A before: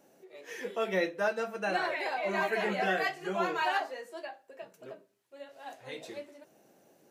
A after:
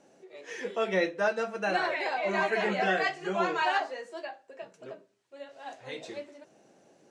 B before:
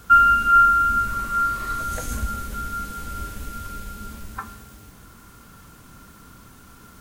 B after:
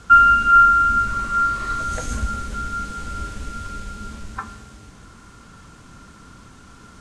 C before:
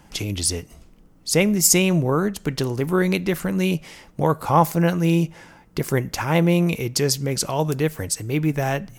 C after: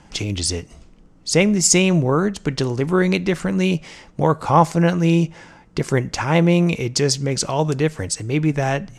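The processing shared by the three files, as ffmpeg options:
-af "lowpass=f=8.3k:w=0.5412,lowpass=f=8.3k:w=1.3066,volume=2.5dB"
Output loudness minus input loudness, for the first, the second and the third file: +2.5, +2.5, +2.0 LU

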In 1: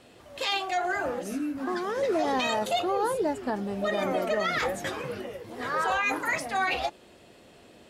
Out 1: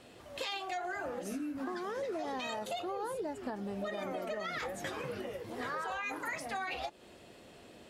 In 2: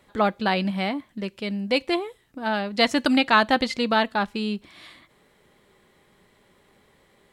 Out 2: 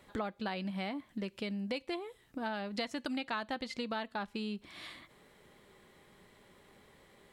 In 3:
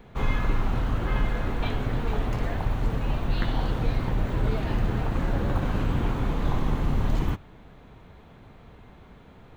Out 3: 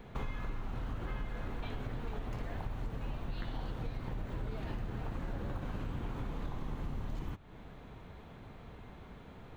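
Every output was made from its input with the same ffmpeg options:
-af "acompressor=threshold=-34dB:ratio=6,volume=-1.5dB"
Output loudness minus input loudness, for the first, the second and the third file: -10.0, -15.5, -14.0 LU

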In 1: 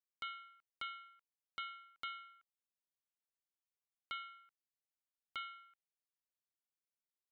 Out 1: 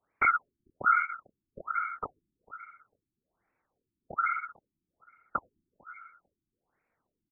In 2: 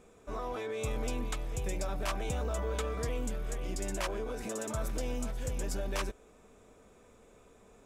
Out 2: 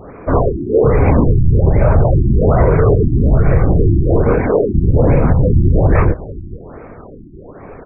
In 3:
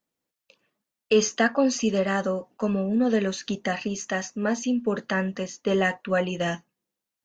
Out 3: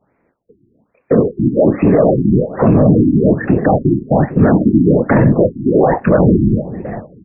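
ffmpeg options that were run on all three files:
-filter_complex "[0:a]acrossover=split=920|2700[a][b][c];[a]acompressor=threshold=-26dB:ratio=4[d];[b]acompressor=threshold=-47dB:ratio=4[e];[c]acompressor=threshold=-51dB:ratio=4[f];[d][e][f]amix=inputs=3:normalize=0,flanger=delay=22.5:depth=7.4:speed=0.53,asoftclip=type=tanh:threshold=-22.5dB,afftfilt=real='hypot(re,im)*cos(2*PI*random(0))':imag='hypot(re,im)*sin(2*PI*random(1))':win_size=512:overlap=0.75,asuperstop=centerf=3500:order=8:qfactor=1.3,aecho=1:1:448|896:0.1|0.018,alimiter=level_in=35.5dB:limit=-1dB:release=50:level=0:latency=1,afftfilt=real='re*lt(b*sr/1024,350*pow(2900/350,0.5+0.5*sin(2*PI*1.2*pts/sr)))':imag='im*lt(b*sr/1024,350*pow(2900/350,0.5+0.5*sin(2*PI*1.2*pts/sr)))':win_size=1024:overlap=0.75,volume=-1dB"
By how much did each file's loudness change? +17.5, +23.5, +13.0 LU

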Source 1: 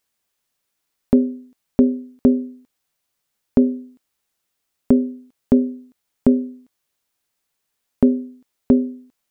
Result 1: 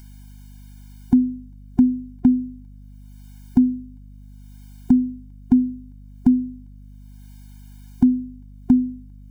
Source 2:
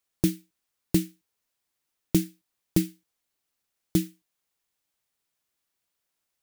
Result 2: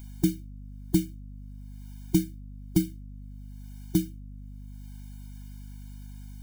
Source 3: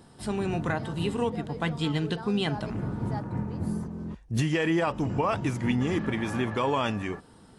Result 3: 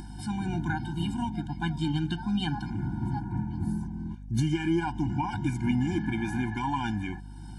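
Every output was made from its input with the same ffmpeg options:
-af "acompressor=mode=upward:threshold=-36dB:ratio=2.5,aeval=exprs='val(0)+0.00891*(sin(2*PI*50*n/s)+sin(2*PI*2*50*n/s)/2+sin(2*PI*3*50*n/s)/3+sin(2*PI*4*50*n/s)/4+sin(2*PI*5*50*n/s)/5)':c=same,afftfilt=real='re*eq(mod(floor(b*sr/1024/350),2),0)':imag='im*eq(mod(floor(b*sr/1024/350),2),0)':win_size=1024:overlap=0.75"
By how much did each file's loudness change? -0.5, -1.0, -1.5 LU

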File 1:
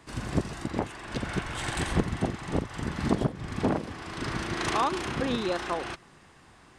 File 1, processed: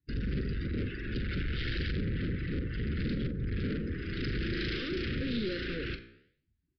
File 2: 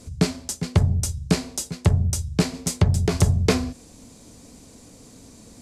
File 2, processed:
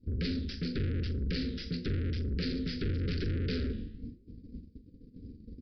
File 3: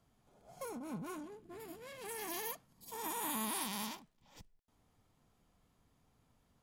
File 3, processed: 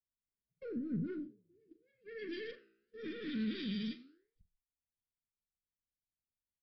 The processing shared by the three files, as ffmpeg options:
-filter_complex "[0:a]afftdn=nr=20:nf=-45,agate=range=-24dB:threshold=-46dB:ratio=16:detection=peak,acontrast=51,bass=f=250:g=12,treble=f=4k:g=5,acontrast=59,equalizer=f=130:w=1.3:g=-6.5,flanger=delay=7.4:depth=9.3:regen=-87:speed=0.91:shape=sinusoidal,aeval=exprs='(tanh(22.4*val(0)+0.15)-tanh(0.15))/22.4':c=same,asuperstop=centerf=850:order=8:qfactor=0.87,asplit=2[a][b];[b]adelay=42,volume=-12dB[c];[a][c]amix=inputs=2:normalize=0,asplit=2[d][e];[e]adelay=90,highpass=300,lowpass=3.4k,asoftclip=type=hard:threshold=-26dB,volume=-20dB[f];[d][f]amix=inputs=2:normalize=0,aresample=11025,aresample=44100,volume=-3.5dB"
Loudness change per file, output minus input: -4.0, -11.5, 0.0 LU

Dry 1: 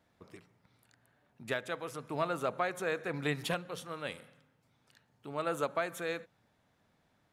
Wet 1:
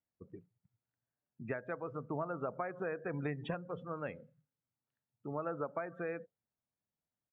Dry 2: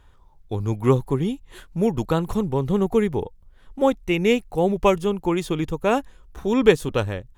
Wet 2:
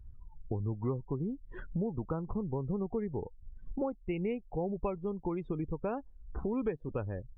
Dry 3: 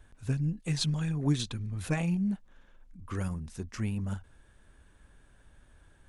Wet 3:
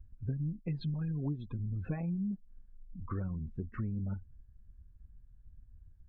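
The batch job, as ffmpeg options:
-af "aemphasis=mode=reproduction:type=75fm,acompressor=threshold=-37dB:ratio=4,aresample=22050,aresample=44100,bass=f=250:g=2,treble=f=4k:g=-12,afftdn=nr=28:nf=-47,volume=1.5dB"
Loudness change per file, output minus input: -4.5, -14.0, -5.0 LU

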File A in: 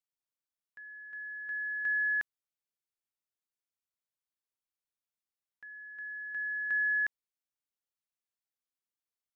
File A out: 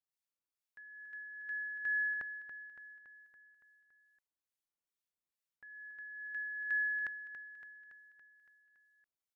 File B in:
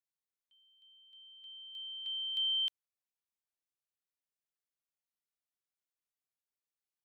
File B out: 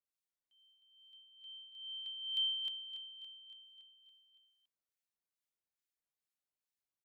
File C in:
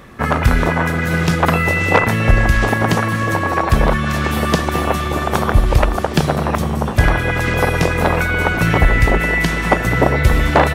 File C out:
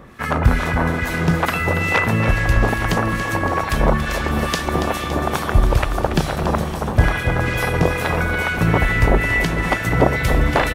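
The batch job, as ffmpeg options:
-filter_complex "[0:a]acrossover=split=1400[a][b];[a]aeval=exprs='val(0)*(1-0.7/2+0.7/2*cos(2*PI*2.3*n/s))':c=same[c];[b]aeval=exprs='val(0)*(1-0.7/2-0.7/2*cos(2*PI*2.3*n/s))':c=same[d];[c][d]amix=inputs=2:normalize=0,aecho=1:1:282|564|846|1128|1410|1692|1974:0.316|0.187|0.11|0.0649|0.0383|0.0226|0.0133"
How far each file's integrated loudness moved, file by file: -6.0, -5.0, -3.0 LU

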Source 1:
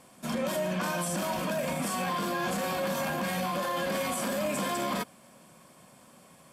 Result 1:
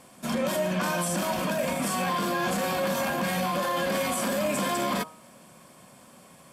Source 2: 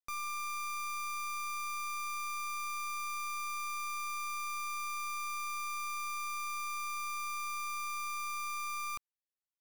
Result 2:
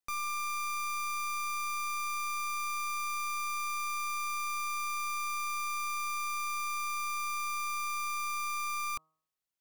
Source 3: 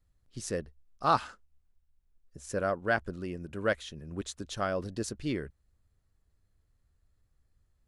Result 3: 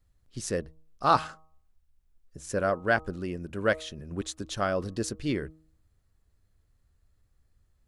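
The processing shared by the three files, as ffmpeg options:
-af "bandreject=f=157.9:t=h:w=4,bandreject=f=315.8:t=h:w=4,bandreject=f=473.7:t=h:w=4,bandreject=f=631.6:t=h:w=4,bandreject=f=789.5:t=h:w=4,bandreject=f=947.4:t=h:w=4,bandreject=f=1.1053k:t=h:w=4,bandreject=f=1.2632k:t=h:w=4,volume=3.5dB"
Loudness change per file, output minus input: +3.5, +3.5, +3.5 LU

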